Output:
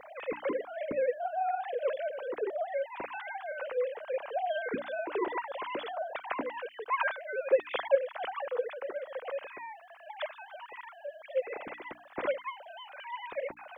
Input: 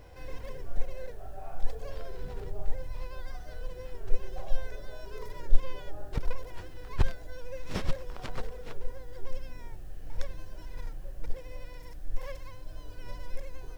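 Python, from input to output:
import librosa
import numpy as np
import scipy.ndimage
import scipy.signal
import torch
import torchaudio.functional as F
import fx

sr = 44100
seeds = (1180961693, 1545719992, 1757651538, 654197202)

y = fx.sine_speech(x, sr)
y = fx.quant_dither(y, sr, seeds[0], bits=12, dither='none')
y = fx.hum_notches(y, sr, base_hz=60, count=5)
y = F.gain(torch.from_numpy(y), -8.0).numpy()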